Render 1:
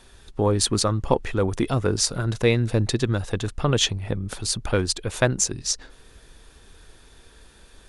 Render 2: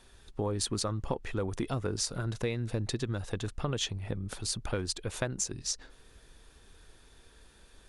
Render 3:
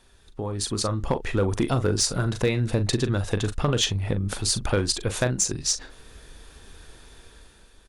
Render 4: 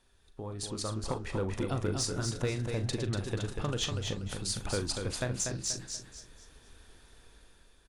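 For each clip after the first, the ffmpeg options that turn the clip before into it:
-af "acompressor=threshold=-21dB:ratio=6,volume=-7dB"
-filter_complex "[0:a]asplit=2[a][b];[b]adelay=40,volume=-11dB[c];[a][c]amix=inputs=2:normalize=0,dynaudnorm=f=180:g=9:m=9.5dB,volume=13.5dB,asoftclip=hard,volume=-13.5dB"
-filter_complex "[0:a]flanger=delay=7:depth=8.6:regen=90:speed=1.7:shape=sinusoidal,asplit=2[a][b];[b]aecho=0:1:241|482|723|964:0.531|0.17|0.0544|0.0174[c];[a][c]amix=inputs=2:normalize=0,volume=-5.5dB"

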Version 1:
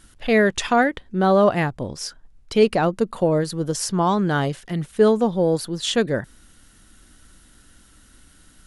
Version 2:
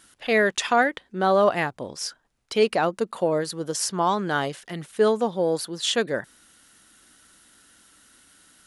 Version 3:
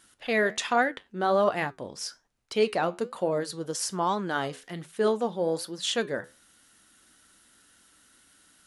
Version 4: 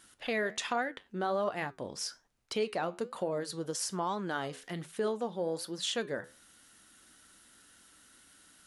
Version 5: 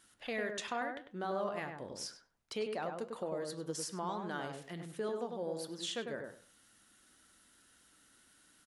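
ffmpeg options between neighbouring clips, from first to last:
-af "highpass=f=500:p=1"
-af "flanger=delay=7.9:depth=5.5:regen=-74:speed=1.2:shape=triangular"
-af "acompressor=threshold=-35dB:ratio=2"
-filter_complex "[0:a]asplit=2[a][b];[b]adelay=99,lowpass=f=1.4k:p=1,volume=-3.5dB,asplit=2[c][d];[d]adelay=99,lowpass=f=1.4k:p=1,volume=0.23,asplit=2[e][f];[f]adelay=99,lowpass=f=1.4k:p=1,volume=0.23[g];[a][c][e][g]amix=inputs=4:normalize=0,volume=-6dB"

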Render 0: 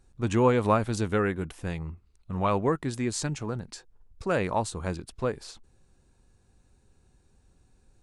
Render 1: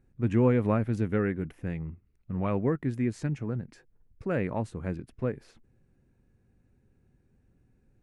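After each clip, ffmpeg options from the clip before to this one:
-af "equalizer=f=125:t=o:w=1:g=8,equalizer=f=250:t=o:w=1:g=7,equalizer=f=500:t=o:w=1:g=3,equalizer=f=1k:t=o:w=1:g=-5,equalizer=f=2k:t=o:w=1:g=7,equalizer=f=4k:t=o:w=1:g=-9,equalizer=f=8k:t=o:w=1:g=-11,volume=-7dB"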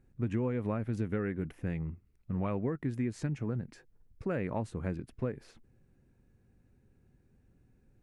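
-af "acompressor=threshold=-29dB:ratio=5"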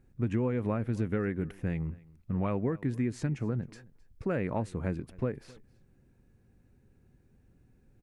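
-af "aecho=1:1:263:0.0708,volume=2.5dB"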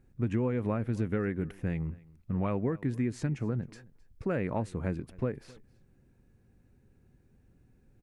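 -af anull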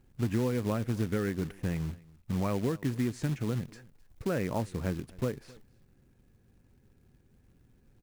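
-af "acrusher=bits=4:mode=log:mix=0:aa=0.000001"

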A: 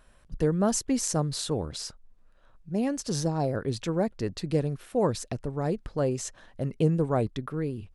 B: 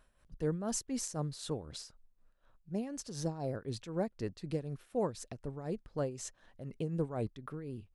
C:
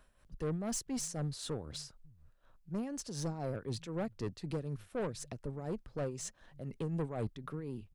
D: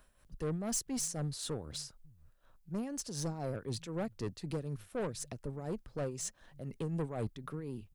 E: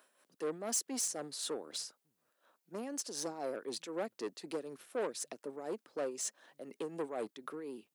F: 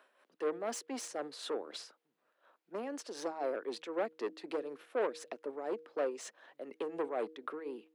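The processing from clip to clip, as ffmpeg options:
-af "tremolo=f=4:d=0.65,volume=-7dB"
-filter_complex "[0:a]acrossover=split=130[a][b];[a]aecho=1:1:551:0.224[c];[b]asoftclip=type=tanh:threshold=-34dB[d];[c][d]amix=inputs=2:normalize=0,volume=2dB"
-af "highshelf=f=7.6k:g=7.5"
-af "highpass=f=290:w=0.5412,highpass=f=290:w=1.3066,volume=1.5dB"
-filter_complex "[0:a]acrossover=split=260 3600:gain=0.141 1 0.141[a][b][c];[a][b][c]amix=inputs=3:normalize=0,bandreject=f=158.1:t=h:w=4,bandreject=f=316.2:t=h:w=4,bandreject=f=474.3:t=h:w=4,volume=4dB"

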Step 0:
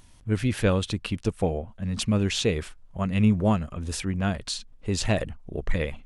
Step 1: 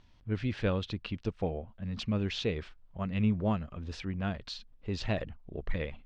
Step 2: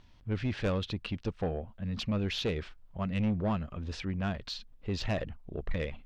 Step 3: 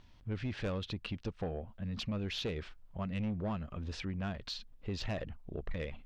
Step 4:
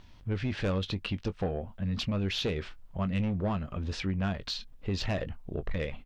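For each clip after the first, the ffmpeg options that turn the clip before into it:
-af "lowpass=f=4.8k:w=0.5412,lowpass=f=4.8k:w=1.3066,volume=-7.5dB"
-af "asoftclip=type=tanh:threshold=-26.5dB,volume=2.5dB"
-af "acompressor=threshold=-36dB:ratio=2,volume=-1dB"
-filter_complex "[0:a]asplit=2[a][b];[b]adelay=21,volume=-13dB[c];[a][c]amix=inputs=2:normalize=0,volume=6dB"

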